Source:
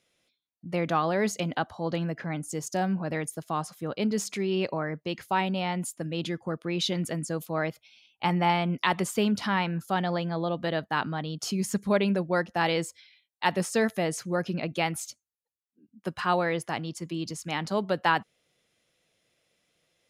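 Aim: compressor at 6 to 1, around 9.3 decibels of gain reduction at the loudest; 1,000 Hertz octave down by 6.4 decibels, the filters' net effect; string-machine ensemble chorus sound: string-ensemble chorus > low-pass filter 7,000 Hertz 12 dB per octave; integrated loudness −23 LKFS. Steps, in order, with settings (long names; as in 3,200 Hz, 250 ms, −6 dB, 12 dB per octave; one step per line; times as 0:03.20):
parametric band 1,000 Hz −8.5 dB
downward compressor 6 to 1, threshold −32 dBFS
string-ensemble chorus
low-pass filter 7,000 Hz 12 dB per octave
level +17 dB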